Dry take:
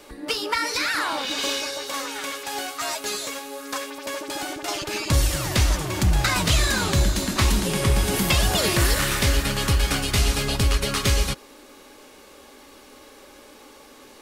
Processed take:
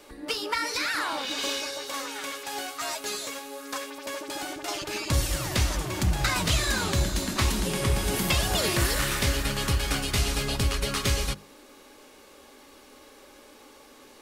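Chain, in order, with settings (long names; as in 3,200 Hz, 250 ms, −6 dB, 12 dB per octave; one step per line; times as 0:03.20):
mains-hum notches 50/100/150/200 Hz
level −4 dB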